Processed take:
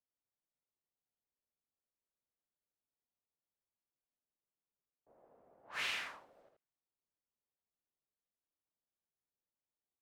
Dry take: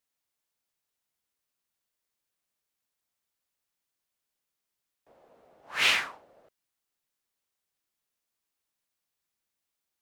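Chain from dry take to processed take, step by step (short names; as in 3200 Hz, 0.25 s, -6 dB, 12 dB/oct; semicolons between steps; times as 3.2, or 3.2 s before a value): low-pass opened by the level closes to 780 Hz, open at -41.5 dBFS; compressor 6:1, threshold -29 dBFS, peak gain reduction 9.5 dB; echo 80 ms -5 dB; gain -7.5 dB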